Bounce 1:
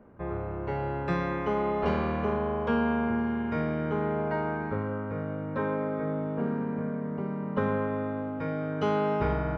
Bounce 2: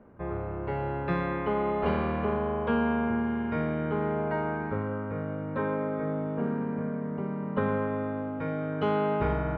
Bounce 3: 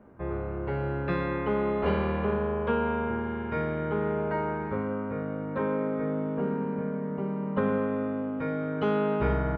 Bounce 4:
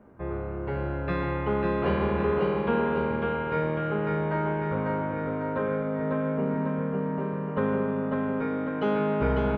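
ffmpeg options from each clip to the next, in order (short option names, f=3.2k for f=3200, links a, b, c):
-af "lowpass=f=3.9k:w=0.5412,lowpass=f=3.9k:w=1.3066"
-filter_complex "[0:a]asplit=2[a][b];[b]adelay=15,volume=-6.5dB[c];[a][c]amix=inputs=2:normalize=0"
-af "aecho=1:1:548|1096|1644|2192|2740|3288|3836:0.708|0.368|0.191|0.0995|0.0518|0.0269|0.014"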